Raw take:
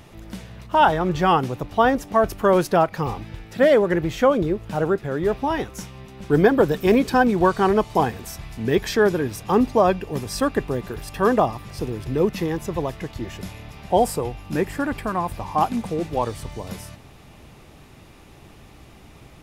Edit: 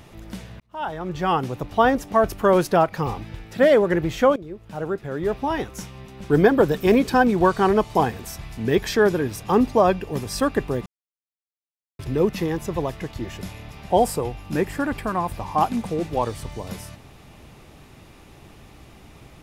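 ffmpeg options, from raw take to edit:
ffmpeg -i in.wav -filter_complex "[0:a]asplit=5[link_01][link_02][link_03][link_04][link_05];[link_01]atrim=end=0.6,asetpts=PTS-STARTPTS,afade=type=out:start_time=0.596:duration=0.004:curve=hsin[link_06];[link_02]atrim=start=0.6:end=4.36,asetpts=PTS-STARTPTS,afade=type=in:duration=1.08,afade=type=out:start_time=3.756:duration=0.004:curve=hsin:silence=0.112202[link_07];[link_03]atrim=start=4.36:end=10.86,asetpts=PTS-STARTPTS,afade=type=in:duration=1.73:curve=qsin:silence=0.112202,afade=type=out:start_time=6.496:duration=0.004:curve=hsin[link_08];[link_04]atrim=start=10.86:end=11.99,asetpts=PTS-STARTPTS,volume=0[link_09];[link_05]atrim=start=11.99,asetpts=PTS-STARTPTS,afade=type=in:duration=0.004:curve=hsin[link_10];[link_06][link_07][link_08][link_09][link_10]concat=n=5:v=0:a=1" out.wav

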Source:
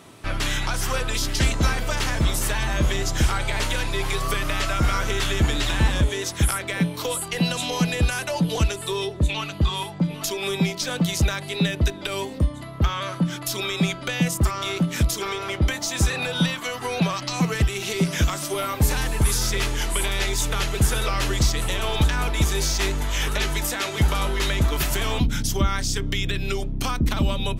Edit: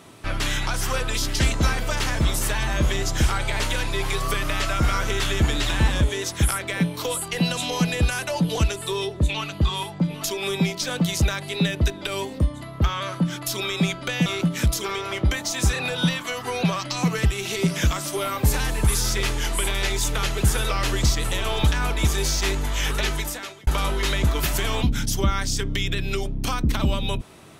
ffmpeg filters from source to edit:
ffmpeg -i in.wav -filter_complex "[0:a]asplit=3[link_01][link_02][link_03];[link_01]atrim=end=14.262[link_04];[link_02]atrim=start=14.628:end=24.04,asetpts=PTS-STARTPTS,afade=type=out:start_time=8.822:duration=0.59[link_05];[link_03]atrim=start=24.04,asetpts=PTS-STARTPTS,afade=type=in:duration=0.004:curve=hsin[link_06];[link_05][link_06]concat=n=2:v=0:a=1[link_07];[link_04][link_07]acrossfade=duration=0.004:curve1=hsin:curve2=hsin" out.wav

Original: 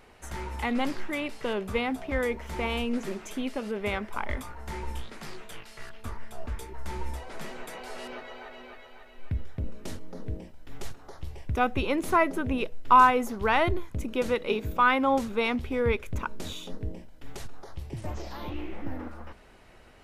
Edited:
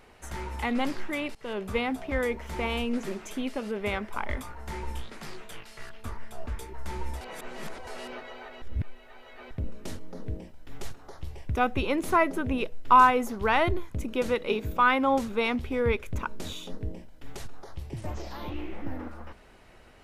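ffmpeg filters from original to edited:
ffmpeg -i in.wav -filter_complex "[0:a]asplit=6[link_01][link_02][link_03][link_04][link_05][link_06];[link_01]atrim=end=1.35,asetpts=PTS-STARTPTS,afade=type=out:start_time=1.346:duration=0.004:curve=hsin:silence=0.1[link_07];[link_02]atrim=start=1.35:end=7.212,asetpts=PTS-STARTPTS,afade=type=in:duration=0.42:curve=qsin:silence=0.1[link_08];[link_03]atrim=start=7.208:end=7.872,asetpts=PTS-STARTPTS,areverse[link_09];[link_04]atrim=start=7.868:end=8.622[link_10];[link_05]atrim=start=8.618:end=9.512,asetpts=PTS-STARTPTS,areverse[link_11];[link_06]atrim=start=9.508[link_12];[link_07][link_08]concat=n=2:v=0:a=1[link_13];[link_13][link_09]acrossfade=duration=0.004:curve1=hsin:curve2=hsin[link_14];[link_14][link_10]acrossfade=duration=0.004:curve1=hsin:curve2=hsin[link_15];[link_15][link_11]acrossfade=duration=0.004:curve1=hsin:curve2=hsin[link_16];[link_16][link_12]acrossfade=duration=0.004:curve1=hsin:curve2=hsin" out.wav

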